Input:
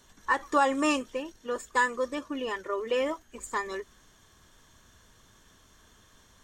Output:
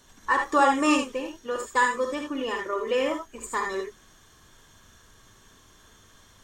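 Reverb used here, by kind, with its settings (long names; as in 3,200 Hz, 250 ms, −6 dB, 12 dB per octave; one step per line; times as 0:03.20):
reverb whose tail is shaped and stops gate 100 ms rising, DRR 2.5 dB
level +2 dB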